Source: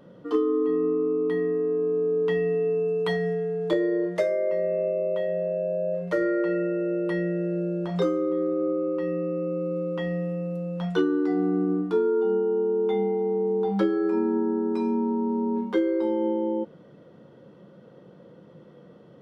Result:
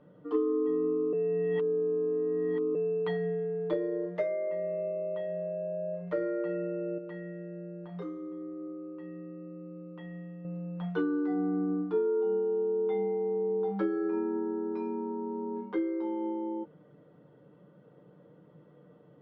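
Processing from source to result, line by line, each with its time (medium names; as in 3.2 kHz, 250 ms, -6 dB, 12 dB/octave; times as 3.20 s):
1.13–2.75 s: reverse
6.98–10.45 s: feedback comb 61 Hz, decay 1.2 s
whole clip: low-pass 2.5 kHz 12 dB/octave; comb 6.7 ms, depth 48%; trim -8 dB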